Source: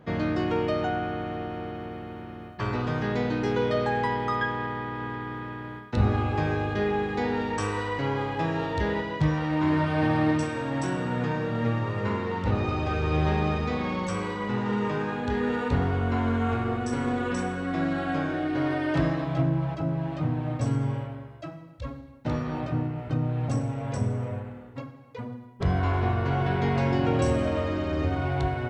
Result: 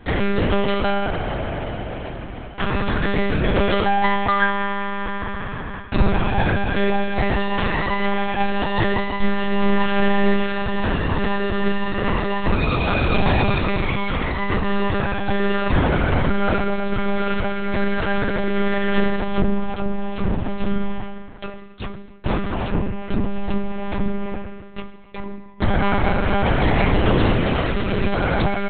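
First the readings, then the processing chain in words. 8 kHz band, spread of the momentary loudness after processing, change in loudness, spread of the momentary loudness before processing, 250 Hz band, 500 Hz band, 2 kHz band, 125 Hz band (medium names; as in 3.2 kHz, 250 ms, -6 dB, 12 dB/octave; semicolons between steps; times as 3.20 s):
under -30 dB, 11 LU, +5.5 dB, 12 LU, +5.0 dB, +6.0 dB, +9.0 dB, +2.5 dB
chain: treble shelf 2.1 kHz +10.5 dB; comb of notches 580 Hz; monotone LPC vocoder at 8 kHz 200 Hz; trim +8 dB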